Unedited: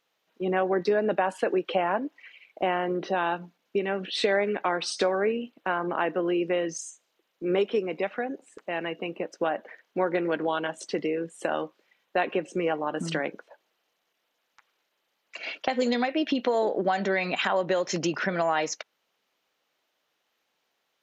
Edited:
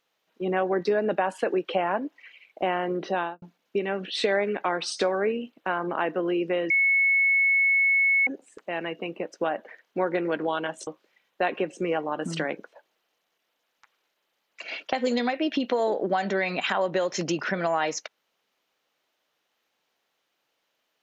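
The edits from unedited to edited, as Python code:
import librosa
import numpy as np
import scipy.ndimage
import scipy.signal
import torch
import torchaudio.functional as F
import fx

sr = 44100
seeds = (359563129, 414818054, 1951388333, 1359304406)

y = fx.studio_fade_out(x, sr, start_s=3.17, length_s=0.25)
y = fx.edit(y, sr, fx.bleep(start_s=6.7, length_s=1.57, hz=2200.0, db=-18.0),
    fx.cut(start_s=10.87, length_s=0.75), tone=tone)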